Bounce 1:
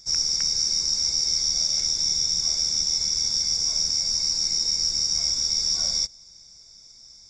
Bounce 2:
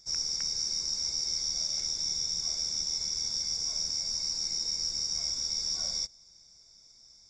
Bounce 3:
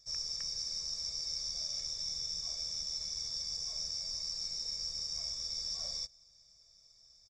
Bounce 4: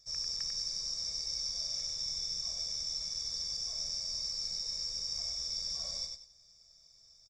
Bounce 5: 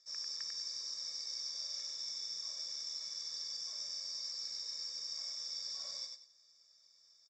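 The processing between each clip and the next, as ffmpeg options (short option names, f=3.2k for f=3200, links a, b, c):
-af "equalizer=f=660:t=o:w=3:g=3,volume=-8.5dB"
-af "aecho=1:1:1.7:0.84,volume=-8.5dB"
-af "aecho=1:1:96|192|288:0.596|0.149|0.0372"
-af "highpass=420,equalizer=f=460:t=q:w=4:g=-4,equalizer=f=690:t=q:w=4:g=-9,equalizer=f=1.7k:t=q:w=4:g=3,equalizer=f=2.5k:t=q:w=4:g=-4,equalizer=f=5.7k:t=q:w=4:g=-5,lowpass=f=7.2k:w=0.5412,lowpass=f=7.2k:w=1.3066,volume=-1dB"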